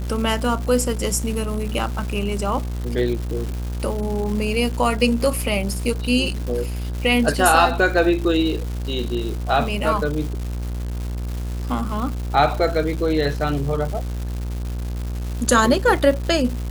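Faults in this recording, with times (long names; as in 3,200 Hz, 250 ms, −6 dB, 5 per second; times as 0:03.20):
mains buzz 60 Hz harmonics 28 −26 dBFS
surface crackle 360 per second −28 dBFS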